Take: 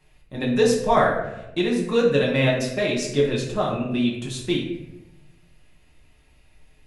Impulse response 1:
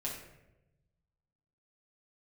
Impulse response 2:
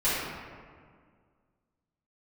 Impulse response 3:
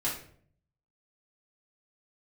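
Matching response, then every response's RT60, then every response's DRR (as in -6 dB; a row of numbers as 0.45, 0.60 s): 1; 0.95, 1.9, 0.55 s; -4.5, -14.0, -7.5 dB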